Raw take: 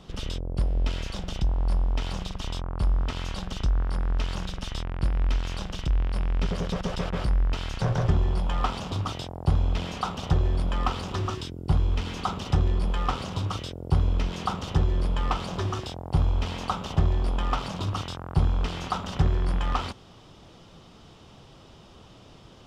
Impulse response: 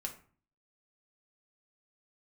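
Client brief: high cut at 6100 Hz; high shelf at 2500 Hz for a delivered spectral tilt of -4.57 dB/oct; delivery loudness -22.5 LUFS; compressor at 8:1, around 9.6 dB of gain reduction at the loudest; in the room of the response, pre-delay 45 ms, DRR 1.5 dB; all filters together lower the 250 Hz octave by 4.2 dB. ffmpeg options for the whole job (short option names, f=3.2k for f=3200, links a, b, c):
-filter_complex "[0:a]lowpass=6.1k,equalizer=f=250:t=o:g=-7.5,highshelf=f=2.5k:g=8.5,acompressor=threshold=-28dB:ratio=8,asplit=2[a][b];[1:a]atrim=start_sample=2205,adelay=45[c];[b][c]afir=irnorm=-1:irlink=0,volume=-1dB[d];[a][d]amix=inputs=2:normalize=0,volume=9dB"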